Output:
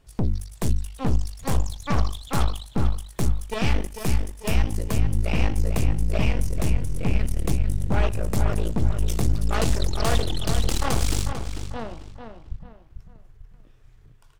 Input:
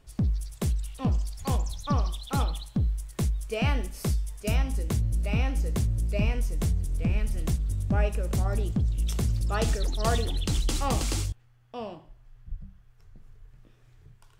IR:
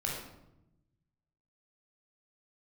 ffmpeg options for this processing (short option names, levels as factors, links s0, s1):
-filter_complex "[0:a]aeval=exprs='0.251*(cos(1*acos(clip(val(0)/0.251,-1,1)))-cos(1*PI/2))+0.0501*(cos(8*acos(clip(val(0)/0.251,-1,1)))-cos(8*PI/2))':c=same,asplit=2[s0][s1];[s1]adelay=445,lowpass=f=3900:p=1,volume=0.422,asplit=2[s2][s3];[s3]adelay=445,lowpass=f=3900:p=1,volume=0.35,asplit=2[s4][s5];[s5]adelay=445,lowpass=f=3900:p=1,volume=0.35,asplit=2[s6][s7];[s7]adelay=445,lowpass=f=3900:p=1,volume=0.35[s8];[s2][s4][s6][s8]amix=inputs=4:normalize=0[s9];[s0][s9]amix=inputs=2:normalize=0"